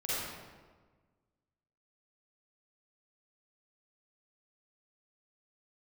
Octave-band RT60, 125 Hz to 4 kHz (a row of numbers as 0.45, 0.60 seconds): 1.8, 1.7, 1.5, 1.4, 1.1, 0.90 seconds